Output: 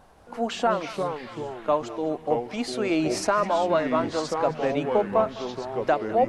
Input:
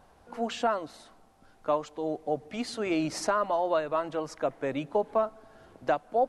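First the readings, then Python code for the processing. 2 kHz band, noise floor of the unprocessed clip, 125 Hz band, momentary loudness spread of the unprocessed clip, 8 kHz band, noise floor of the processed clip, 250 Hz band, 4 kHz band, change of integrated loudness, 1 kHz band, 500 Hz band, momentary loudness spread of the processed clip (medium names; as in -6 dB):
+5.0 dB, -60 dBFS, +8.0 dB, 8 LU, +4.5 dB, -46 dBFS, +6.0 dB, +5.5 dB, +4.5 dB, +4.5 dB, +5.0 dB, 8 LU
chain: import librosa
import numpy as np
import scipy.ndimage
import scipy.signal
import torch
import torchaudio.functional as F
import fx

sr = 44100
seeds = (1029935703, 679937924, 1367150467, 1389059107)

y = fx.echo_banded(x, sr, ms=206, feedback_pct=75, hz=2100.0, wet_db=-13)
y = fx.echo_pitch(y, sr, ms=184, semitones=-4, count=3, db_per_echo=-6.0)
y = F.gain(torch.from_numpy(y), 4.0).numpy()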